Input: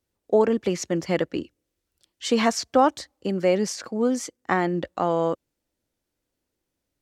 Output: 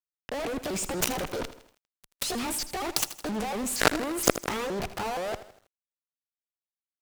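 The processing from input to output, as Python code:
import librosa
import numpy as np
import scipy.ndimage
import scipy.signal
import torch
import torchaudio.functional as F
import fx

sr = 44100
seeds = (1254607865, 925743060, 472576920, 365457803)

y = fx.pitch_ramps(x, sr, semitones=8.0, every_ms=235)
y = fx.fuzz(y, sr, gain_db=38.0, gate_db=-41.0)
y = fx.over_compress(y, sr, threshold_db=-24.0, ratio=-1.0)
y = fx.low_shelf(y, sr, hz=130.0, db=10.5)
y = fx.cheby_harmonics(y, sr, harmonics=(3, 7), levels_db=(-12, -18), full_scale_db=-2.5)
y = fx.echo_crushed(y, sr, ms=80, feedback_pct=55, bits=8, wet_db=-13.5)
y = y * 10.0 ** (-1.5 / 20.0)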